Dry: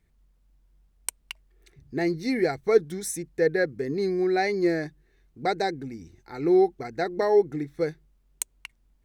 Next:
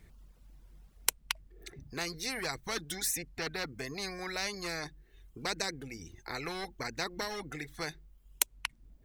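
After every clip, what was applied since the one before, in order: reverb removal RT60 0.79 s; in parallel at -11 dB: hard clipper -18.5 dBFS, distortion -12 dB; on the sum: spectrum-flattening compressor 4:1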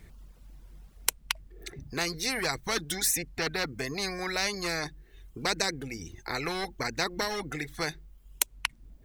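loudness maximiser +10.5 dB; trim -4.5 dB

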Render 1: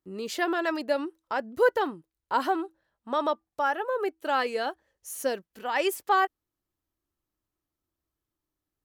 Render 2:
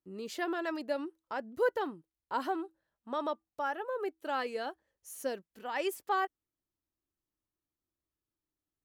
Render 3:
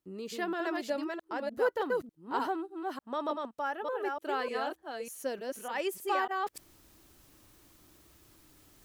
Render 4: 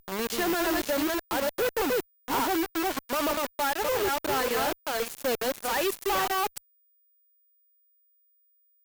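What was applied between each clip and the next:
peaking EQ 230 Hz +3 dB 2.2 oct; trim -8.5 dB
chunks repeated in reverse 299 ms, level -3 dB; reverse; upward compressor, threshold -36 dBFS; reverse
companded quantiser 2-bit; whistle 15 kHz -42 dBFS; Chebyshev shaper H 3 -12 dB, 7 -31 dB, 8 -18 dB, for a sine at -23.5 dBFS

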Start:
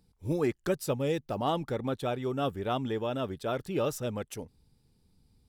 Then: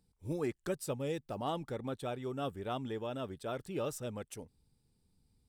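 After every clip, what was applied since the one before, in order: peaking EQ 8.5 kHz +7 dB 0.31 oct; trim -7 dB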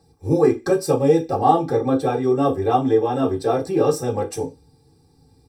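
comb 2.5 ms, depth 84%; in parallel at 0 dB: compression, threshold -42 dBFS, peak gain reduction 14 dB; on the sum: reverberation RT60 0.20 s, pre-delay 3 ms, DRR -4 dB; trim +1 dB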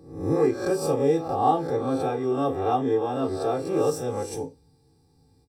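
reverse spectral sustain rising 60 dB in 0.60 s; endings held to a fixed fall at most 370 dB/s; trim -7.5 dB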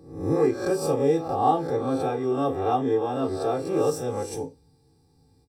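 no audible change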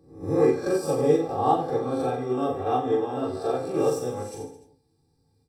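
on a send: reverse bouncing-ball echo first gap 40 ms, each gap 1.2×, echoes 5; on the sum: upward expansion 1.5:1, over -32 dBFS

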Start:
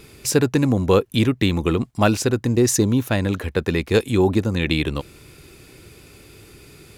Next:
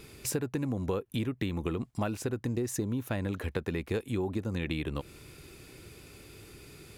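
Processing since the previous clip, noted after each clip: dynamic bell 5.1 kHz, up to -8 dB, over -41 dBFS, Q 0.95; compression, threshold -24 dBFS, peak gain reduction 12.5 dB; trim -5 dB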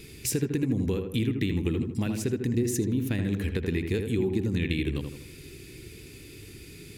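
high-order bell 870 Hz -12.5 dB; filtered feedback delay 80 ms, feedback 49%, low-pass 1.9 kHz, level -5 dB; trim +4.5 dB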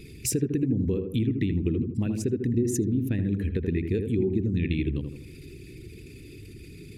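resonances exaggerated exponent 1.5; trim +1.5 dB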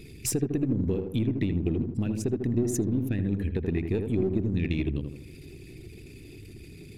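partial rectifier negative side -3 dB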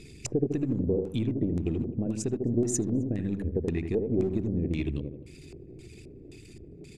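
LFO low-pass square 1.9 Hz 570–7700 Hz; hum notches 50/100 Hz; echo from a far wall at 45 m, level -29 dB; trim -2 dB

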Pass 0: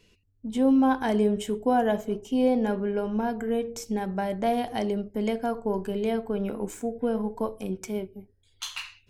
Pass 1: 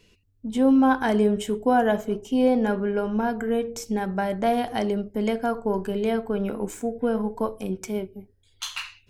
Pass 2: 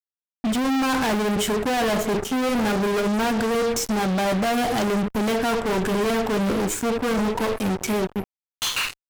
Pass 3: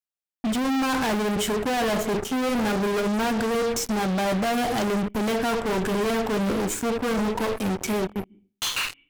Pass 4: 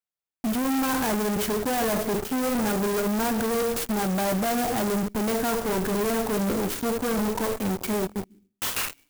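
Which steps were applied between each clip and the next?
dynamic bell 1.4 kHz, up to +5 dB, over -46 dBFS, Q 2.3; trim +2.5 dB
fuzz box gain 41 dB, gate -44 dBFS; peak limiter -16.5 dBFS, peak gain reduction 6 dB; trim -3 dB
on a send at -15.5 dB: cascade formant filter i + reverberation RT60 0.40 s, pre-delay 130 ms; on the sum: trim -2 dB
sampling jitter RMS 0.071 ms; trim -1 dB

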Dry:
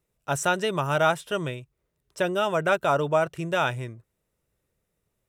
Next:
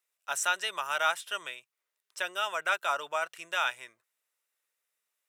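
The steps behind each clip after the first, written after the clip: high-pass 1.3 kHz 12 dB/octave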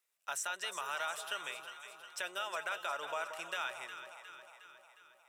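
peak limiter -22.5 dBFS, peak gain reduction 7 dB; compression 2:1, threshold -39 dBFS, peak gain reduction 6.5 dB; echo whose repeats swap between lows and highs 180 ms, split 1.1 kHz, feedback 76%, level -7.5 dB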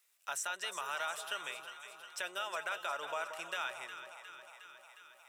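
tape noise reduction on one side only encoder only

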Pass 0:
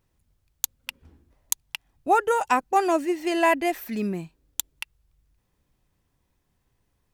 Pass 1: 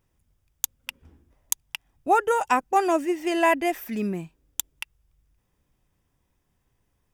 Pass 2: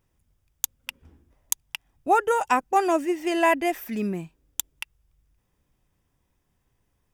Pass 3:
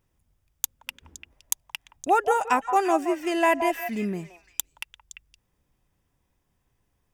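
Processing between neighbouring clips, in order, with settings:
band-stop 4.2 kHz, Q 6.6
no audible change
repeats whose band climbs or falls 172 ms, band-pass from 800 Hz, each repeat 1.4 oct, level -6 dB; trim -1 dB

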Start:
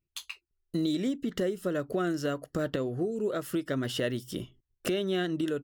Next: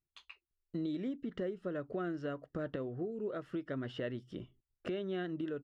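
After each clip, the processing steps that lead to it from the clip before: low-pass 2.4 kHz 12 dB/octave; trim -8 dB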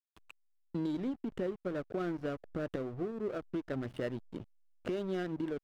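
hysteresis with a dead band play -40 dBFS; trim +3 dB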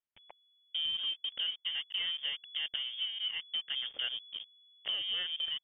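frequency inversion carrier 3.4 kHz

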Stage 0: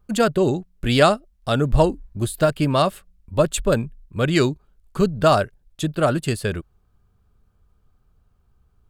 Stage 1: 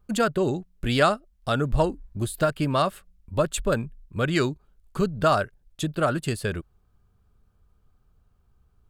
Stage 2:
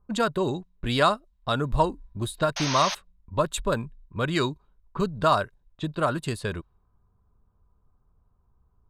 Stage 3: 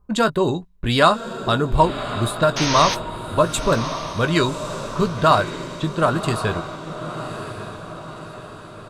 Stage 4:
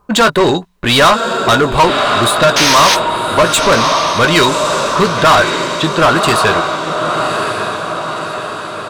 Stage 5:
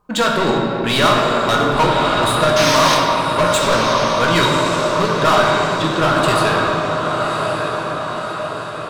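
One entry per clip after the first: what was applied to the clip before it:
dynamic bell 1.4 kHz, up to +5 dB, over -32 dBFS, Q 1.5; in parallel at +1 dB: compression, threshold -23 dBFS, peak gain reduction 14.5 dB; on the sum: trim -8.5 dB
level-controlled noise filter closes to 1.1 kHz, open at -22.5 dBFS; small resonant body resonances 1/3.8 kHz, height 12 dB, ringing for 25 ms; painted sound noise, 2.56–2.95 s, 520–6600 Hz -28 dBFS; trim -2.5 dB
doubling 18 ms -10.5 dB; echo that smears into a reverb 1110 ms, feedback 51%, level -10 dB; trim +6 dB
overdrive pedal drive 25 dB, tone 7.7 kHz, clips at -1 dBFS
simulated room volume 180 m³, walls hard, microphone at 0.57 m; trim -8.5 dB

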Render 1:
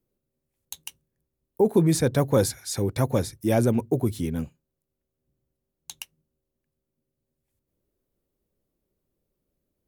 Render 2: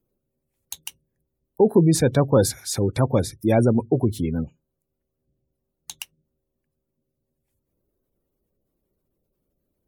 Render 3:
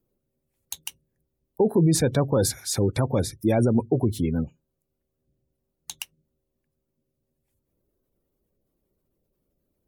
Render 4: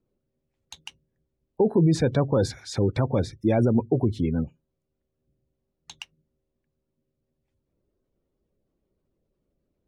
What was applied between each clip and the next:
spectral gate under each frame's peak -30 dB strong; trim +3.5 dB
peak limiter -11.5 dBFS, peak gain reduction 6 dB
distance through air 130 m

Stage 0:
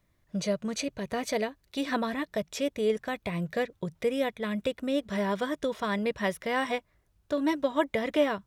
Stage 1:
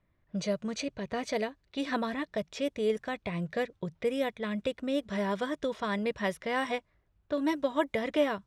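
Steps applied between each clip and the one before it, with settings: level-controlled noise filter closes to 2.6 kHz, open at -23 dBFS; trim -2 dB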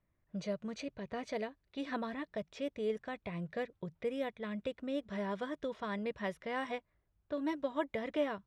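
treble shelf 5.3 kHz -10 dB; trim -6.5 dB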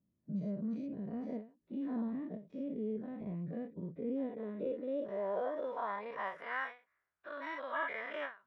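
every event in the spectrogram widened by 120 ms; band-pass sweep 220 Hz -> 1.5 kHz, 3.93–6.67 s; endings held to a fixed fall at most 180 dB/s; trim +2.5 dB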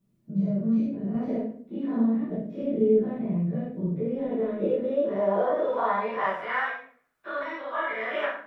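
random-step tremolo; reverberation RT60 0.50 s, pre-delay 5 ms, DRR -6 dB; trim +6.5 dB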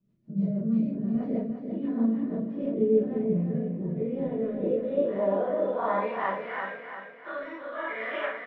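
rotary cabinet horn 6.3 Hz, later 1 Hz, at 2.83 s; distance through air 130 m; feedback delay 344 ms, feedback 43%, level -7 dB

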